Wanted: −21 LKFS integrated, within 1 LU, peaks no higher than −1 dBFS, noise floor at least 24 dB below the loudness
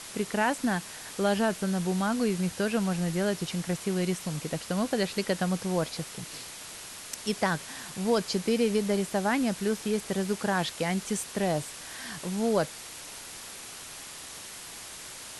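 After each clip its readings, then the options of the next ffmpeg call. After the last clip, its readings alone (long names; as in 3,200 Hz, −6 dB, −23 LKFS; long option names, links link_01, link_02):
background noise floor −43 dBFS; target noise floor −54 dBFS; integrated loudness −30.0 LKFS; sample peak −13.5 dBFS; target loudness −21.0 LKFS
→ -af "afftdn=noise_reduction=11:noise_floor=-43"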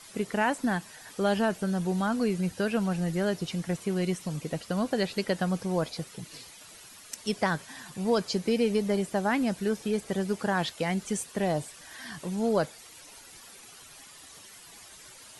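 background noise floor −50 dBFS; target noise floor −54 dBFS
→ -af "afftdn=noise_reduction=6:noise_floor=-50"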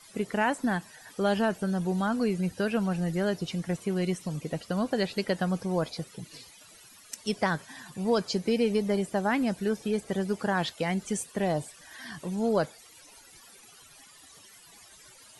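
background noise floor −54 dBFS; integrated loudness −29.5 LKFS; sample peak −14.0 dBFS; target loudness −21.0 LKFS
→ -af "volume=8.5dB"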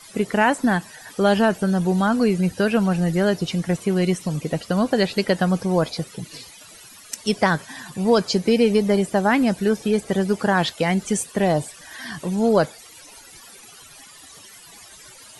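integrated loudness −21.0 LKFS; sample peak −5.5 dBFS; background noise floor −45 dBFS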